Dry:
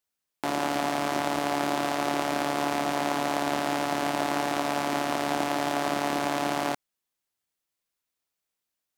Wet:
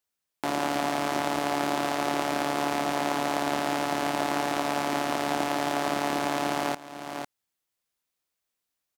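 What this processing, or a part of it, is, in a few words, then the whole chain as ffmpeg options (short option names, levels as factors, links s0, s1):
ducked delay: -filter_complex "[0:a]asplit=3[s0][s1][s2];[s1]adelay=500,volume=0.531[s3];[s2]apad=whole_len=417886[s4];[s3][s4]sidechaincompress=threshold=0.02:ratio=8:attack=8.3:release=505[s5];[s0][s5]amix=inputs=2:normalize=0"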